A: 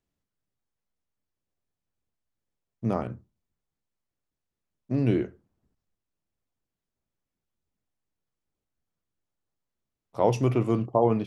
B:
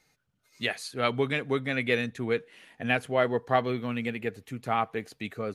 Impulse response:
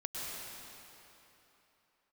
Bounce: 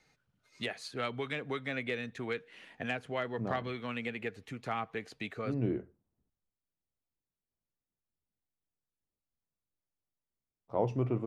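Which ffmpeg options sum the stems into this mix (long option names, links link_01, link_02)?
-filter_complex "[0:a]highshelf=frequency=2500:gain=-11.5,adelay=550,volume=-7.5dB[link_01];[1:a]acrossover=split=400|1100[link_02][link_03][link_04];[link_02]acompressor=threshold=-42dB:ratio=4[link_05];[link_03]acompressor=threshold=-41dB:ratio=4[link_06];[link_04]acompressor=threshold=-37dB:ratio=4[link_07];[link_05][link_06][link_07]amix=inputs=3:normalize=0,asoftclip=type=hard:threshold=-24dB,volume=0dB,asplit=2[link_08][link_09];[link_09]apad=whole_len=521138[link_10];[link_01][link_10]sidechaincompress=threshold=-34dB:ratio=8:attack=16:release=662[link_11];[link_11][link_08]amix=inputs=2:normalize=0,adynamicsmooth=sensitivity=4:basefreq=7300"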